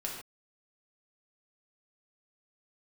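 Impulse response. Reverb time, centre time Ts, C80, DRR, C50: not exponential, 41 ms, 5.5 dB, -2.5 dB, 3.0 dB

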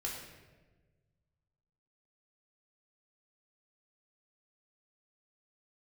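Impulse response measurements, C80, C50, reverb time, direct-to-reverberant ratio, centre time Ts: 5.0 dB, 3.0 dB, 1.3 s, -4.0 dB, 55 ms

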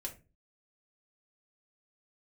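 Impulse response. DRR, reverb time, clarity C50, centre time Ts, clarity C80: -0.5 dB, 0.30 s, 13.0 dB, 11 ms, 20.0 dB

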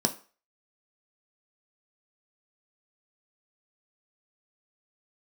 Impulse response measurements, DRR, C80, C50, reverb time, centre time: 4.0 dB, 20.0 dB, 16.0 dB, 0.35 s, 9 ms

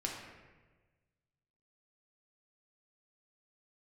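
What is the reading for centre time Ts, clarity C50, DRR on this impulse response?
59 ms, 2.5 dB, -1.5 dB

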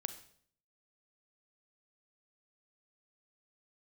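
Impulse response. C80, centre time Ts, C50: 15.0 dB, 8 ms, 12.0 dB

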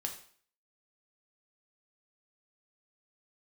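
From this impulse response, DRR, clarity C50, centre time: 2.0 dB, 9.0 dB, 17 ms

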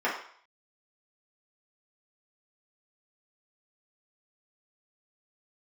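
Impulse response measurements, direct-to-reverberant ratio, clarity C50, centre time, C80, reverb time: -7.0 dB, 5.0 dB, 34 ms, 9.0 dB, 0.55 s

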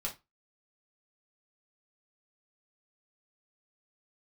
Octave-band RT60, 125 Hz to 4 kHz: 0.25, 0.20, 0.20, 0.25, 0.20, 0.20 s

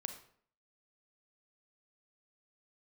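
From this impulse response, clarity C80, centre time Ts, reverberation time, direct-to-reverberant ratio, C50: 12.5 dB, 13 ms, 0.60 s, 6.5 dB, 9.0 dB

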